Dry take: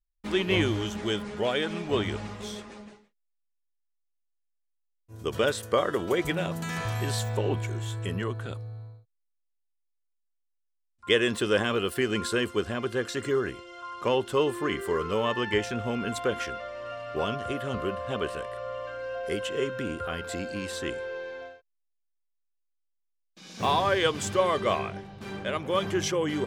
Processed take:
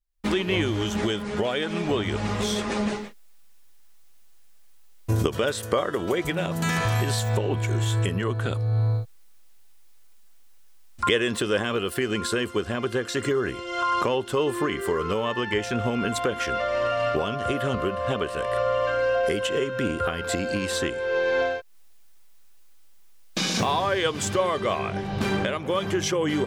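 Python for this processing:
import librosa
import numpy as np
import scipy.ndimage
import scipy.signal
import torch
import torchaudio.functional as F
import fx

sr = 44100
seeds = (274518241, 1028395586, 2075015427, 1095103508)

y = fx.recorder_agc(x, sr, target_db=-16.5, rise_db_per_s=41.0, max_gain_db=30)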